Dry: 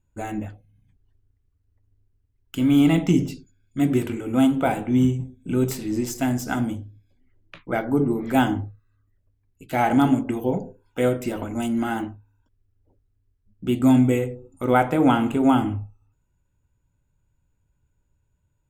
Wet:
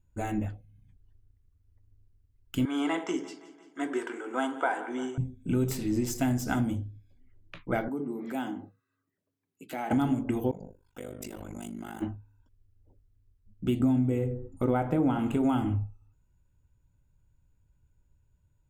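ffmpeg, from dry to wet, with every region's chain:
ffmpeg -i in.wav -filter_complex "[0:a]asettb=1/sr,asplit=3[link_01][link_02][link_03];[link_01]atrim=end=2.654[link_04];[link_02]atrim=start=2.65:end=5.18,asetpts=PTS-STARTPTS,afade=type=in:duration=0.004:curve=qsin,afade=type=out:start_time=2.526:duration=0.004:curve=qsin,highpass=frequency=390:width=0.5412,highpass=frequency=390:width=1.3066,equalizer=frequency=570:width_type=q:width=4:gain=-6,equalizer=frequency=1000:width_type=q:width=4:gain=7,equalizer=frequency=1600:width_type=q:width=4:gain=9,equalizer=frequency=2500:width_type=q:width=4:gain=-8,equalizer=frequency=4000:width_type=q:width=4:gain=-8,equalizer=frequency=6700:width_type=q:width=4:gain=-3,lowpass=frequency=8100:width=0.5412,lowpass=frequency=8100:width=1.3066,aecho=1:1:172|344|516|688|860:0.126|0.0743|0.0438|0.0259|0.0153,atrim=end_sample=111573[link_05];[link_03]atrim=start=5.176[link_06];[link_04][link_05]acrossfade=duration=0.004:curve1=hsin:curve2=qsin[link_07];[link_07][link_06]acrossfade=duration=0.004:curve1=qsin:curve2=hsin,asettb=1/sr,asplit=3[link_08][link_09][link_10];[link_08]atrim=end=7.884[link_11];[link_09]atrim=start=7.88:end=9.91,asetpts=PTS-STARTPTS,afade=type=in:duration=0.004:curve=qsin,afade=type=out:start_time=2.026:duration=0.004:curve=qsin,highpass=frequency=190:width=0.5412,highpass=frequency=190:width=1.3066,acompressor=threshold=-37dB:ratio=2:attack=3.2:release=140:knee=1:detection=peak[link_12];[link_10]atrim=start=9.906[link_13];[link_11][link_12]acrossfade=duration=0.004:curve1=hsin:curve2=qsin[link_14];[link_14][link_13]acrossfade=duration=0.004:curve1=qsin:curve2=hsin,asettb=1/sr,asplit=3[link_15][link_16][link_17];[link_15]atrim=end=10.514[link_18];[link_16]atrim=start=10.51:end=12.02,asetpts=PTS-STARTPTS,afade=type=in:duration=0.004:curve=qsin,afade=type=out:start_time=1.506:duration=0.004:curve=qsin,acompressor=threshold=-30dB:ratio=12:attack=3.2:release=140:knee=1:detection=peak,bass=frequency=250:gain=-3,treble=frequency=4000:gain=7,tremolo=f=50:d=0.947[link_19];[link_17]atrim=start=12.016[link_20];[link_18][link_19]acrossfade=duration=0.004:curve1=hsin:curve2=qsin[link_21];[link_21][link_20]acrossfade=duration=0.004:curve1=qsin:curve2=hsin,asettb=1/sr,asplit=3[link_22][link_23][link_24];[link_22]atrim=end=13.804[link_25];[link_23]atrim=start=13.8:end=15.19,asetpts=PTS-STARTPTS,afade=type=in:duration=0.004:curve=qsin,afade=type=out:start_time=1.386:duration=0.004:curve=qsin,tiltshelf=frequency=1200:gain=5,bandreject=frequency=118.5:width_type=h:width=4,bandreject=frequency=237:width_type=h:width=4,bandreject=frequency=355.5:width_type=h:width=4,bandreject=frequency=474:width_type=h:width=4,bandreject=frequency=592.5:width_type=h:width=4,bandreject=frequency=711:width_type=h:width=4,bandreject=frequency=829.5:width_type=h:width=4,bandreject=frequency=948:width_type=h:width=4,bandreject=frequency=1066.5:width_type=h:width=4,bandreject=frequency=1185:width_type=h:width=4,bandreject=frequency=1303.5:width_type=h:width=4,bandreject=frequency=1422:width_type=h:width=4,bandreject=frequency=1540.5:width_type=h:width=4,bandreject=frequency=1659:width_type=h:width=4,bandreject=frequency=1777.5:width_type=h:width=4,bandreject=frequency=1896:width_type=h:width=4[link_26];[link_24]atrim=start=15.186[link_27];[link_25][link_26]acrossfade=duration=0.004:curve1=hsin:curve2=qsin[link_28];[link_28][link_27]acrossfade=duration=0.004:curve1=qsin:curve2=hsin,lowshelf=frequency=140:gain=7,acompressor=threshold=-20dB:ratio=6,volume=-3dB" out.wav

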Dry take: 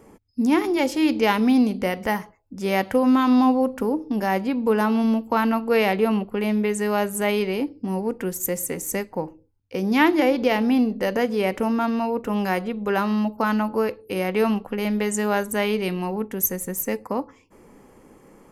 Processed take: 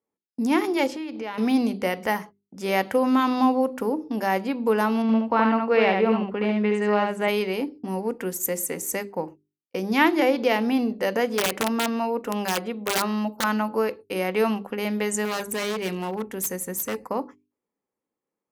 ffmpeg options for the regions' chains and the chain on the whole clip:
ffmpeg -i in.wav -filter_complex "[0:a]asettb=1/sr,asplit=3[link_01][link_02][link_03];[link_01]atrim=end=0.874[link_04];[link_02]atrim=start=0.87:end=1.38,asetpts=PTS-STARTPTS,afade=type=in:duration=0.004:curve=qsin,afade=type=out:start_time=0.506:duration=0.004:curve=qsin,aemphasis=mode=reproduction:type=50kf,acompressor=threshold=-27dB:ratio=10:attack=3.2:release=140:knee=1:detection=peak[link_05];[link_03]atrim=start=1.376[link_06];[link_04][link_05]acrossfade=duration=0.004:curve1=hsin:curve2=qsin[link_07];[link_07][link_06]acrossfade=duration=0.004:curve1=qsin:curve2=hsin,asettb=1/sr,asplit=3[link_08][link_09][link_10];[link_08]atrim=end=5.024[link_11];[link_09]atrim=start=5.02:end=7.28,asetpts=PTS-STARTPTS,afade=type=in:duration=0.004:curve=qsin,afade=type=out:start_time=2.256:duration=0.004:curve=qsin,lowpass=3200,acompressor=mode=upward:threshold=-32dB:ratio=2.5:attack=3.2:release=140:knee=2.83:detection=peak,aecho=1:1:72:0.668,atrim=end_sample=99666[link_12];[link_10]atrim=start=7.276[link_13];[link_11][link_12]acrossfade=duration=0.004:curve1=hsin:curve2=qsin[link_14];[link_14][link_13]acrossfade=duration=0.004:curve1=qsin:curve2=hsin,asettb=1/sr,asplit=3[link_15][link_16][link_17];[link_15]atrim=end=11.274[link_18];[link_16]atrim=start=11.27:end=13.44,asetpts=PTS-STARTPTS,afade=type=in:duration=0.004:curve=qsin,afade=type=out:start_time=2.166:duration=0.004:curve=qsin,equalizer=frequency=110:width=3.7:gain=-14,aeval=exprs='(mod(5.96*val(0)+1,2)-1)/5.96':channel_layout=same[link_19];[link_17]atrim=start=13.436[link_20];[link_18][link_19]acrossfade=duration=0.004:curve1=hsin:curve2=qsin[link_21];[link_21][link_20]acrossfade=duration=0.004:curve1=qsin:curve2=hsin,asettb=1/sr,asplit=3[link_22][link_23][link_24];[link_22]atrim=end=15.254[link_25];[link_23]atrim=start=15.25:end=17.08,asetpts=PTS-STARTPTS,afade=type=in:duration=0.004:curve=qsin,afade=type=out:start_time=1.826:duration=0.004:curve=qsin,aeval=exprs='val(0)+0.00224*(sin(2*PI*60*n/s)+sin(2*PI*2*60*n/s)/2+sin(2*PI*3*60*n/s)/3+sin(2*PI*4*60*n/s)/4+sin(2*PI*5*60*n/s)/5)':channel_layout=same,aeval=exprs='0.0944*(abs(mod(val(0)/0.0944+3,4)-2)-1)':channel_layout=same[link_26];[link_24]atrim=start=17.076[link_27];[link_25][link_26]acrossfade=duration=0.004:curve1=hsin:curve2=qsin[link_28];[link_28][link_27]acrossfade=duration=0.004:curve1=qsin:curve2=hsin,agate=range=-35dB:threshold=-37dB:ratio=16:detection=peak,highpass=frequency=220:poles=1,bandreject=frequency=50:width_type=h:width=6,bandreject=frequency=100:width_type=h:width=6,bandreject=frequency=150:width_type=h:width=6,bandreject=frequency=200:width_type=h:width=6,bandreject=frequency=250:width_type=h:width=6,bandreject=frequency=300:width_type=h:width=6,bandreject=frequency=350:width_type=h:width=6,bandreject=frequency=400:width_type=h:width=6" out.wav

